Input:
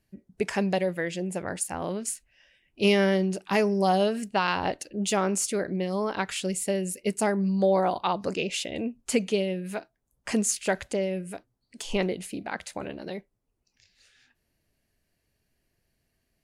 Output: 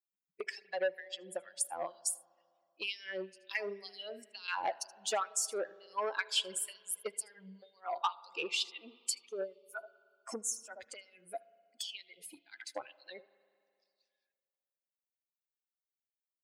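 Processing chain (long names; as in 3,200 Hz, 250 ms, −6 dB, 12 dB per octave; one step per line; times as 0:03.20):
spectral dynamics exaggerated over time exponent 2
in parallel at −1 dB: brickwall limiter −24 dBFS, peak gain reduction 10 dB
on the sum: gain on a spectral selection 0:09.28–0:10.77, 1,500–5,300 Hz −26 dB
single-tap delay 77 ms −23 dB
downward compressor 10 to 1, threshold −35 dBFS, peak gain reduction 18.5 dB
auto-filter high-pass sine 2.1 Hz 500–5,000 Hz
on a send at −20 dB: convolution reverb RT60 2.3 s, pre-delay 35 ms
on the sum: saturating transformer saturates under 1,500 Hz
level +3 dB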